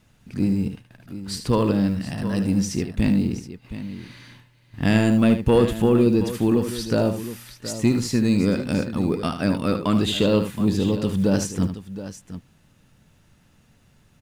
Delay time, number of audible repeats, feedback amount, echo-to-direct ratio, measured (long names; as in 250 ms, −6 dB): 75 ms, 2, repeats not evenly spaced, −7.5 dB